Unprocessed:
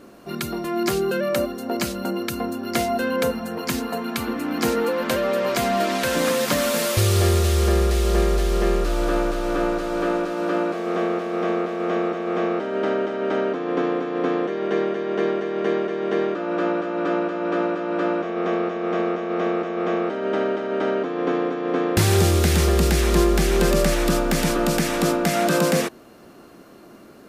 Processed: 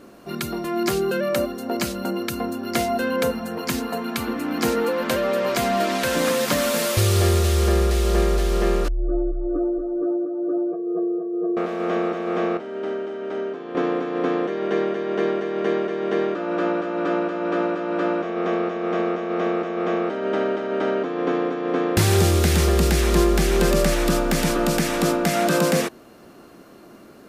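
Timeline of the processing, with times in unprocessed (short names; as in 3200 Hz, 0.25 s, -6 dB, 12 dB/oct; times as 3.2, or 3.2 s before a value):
8.88–11.57 spectral contrast raised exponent 2.9
12.57–13.75 resonator 79 Hz, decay 0.62 s, mix 70%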